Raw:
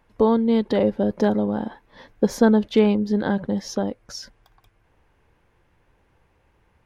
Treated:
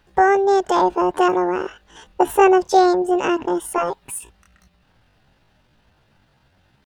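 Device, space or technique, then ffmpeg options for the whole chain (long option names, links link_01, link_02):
chipmunk voice: -filter_complex "[0:a]asetrate=76340,aresample=44100,atempo=0.577676,asettb=1/sr,asplit=3[link_01][link_02][link_03];[link_01]atrim=end=3.774[link_04];[link_02]atrim=start=3.77:end=4.19,asetpts=PTS-STARTPTS,afade=type=in:duration=0.004:curve=qsin,afade=type=out:start_time=0.416:duration=0.004:curve=qsin,aecho=1:1:7.4:0.98,atrim=end_sample=18522[link_05];[link_03]atrim=start=4.186[link_06];[link_04][link_05]acrossfade=duration=0.004:curve1=hsin:curve2=qsin[link_07];[link_07][link_06]acrossfade=duration=0.004:curve1=qsin:curve2=hsin,volume=3dB"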